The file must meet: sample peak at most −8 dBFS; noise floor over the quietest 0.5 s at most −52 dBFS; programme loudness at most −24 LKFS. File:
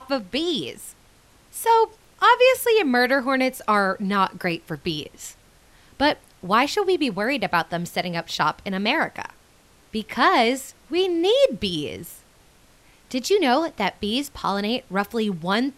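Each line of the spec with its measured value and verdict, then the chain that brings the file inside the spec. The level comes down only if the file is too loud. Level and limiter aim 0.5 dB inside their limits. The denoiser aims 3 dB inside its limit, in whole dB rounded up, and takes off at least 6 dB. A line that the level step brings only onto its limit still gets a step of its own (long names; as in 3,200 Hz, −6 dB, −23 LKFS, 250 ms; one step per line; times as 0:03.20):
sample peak −6.0 dBFS: out of spec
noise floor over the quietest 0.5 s −55 dBFS: in spec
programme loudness −22.0 LKFS: out of spec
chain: level −2.5 dB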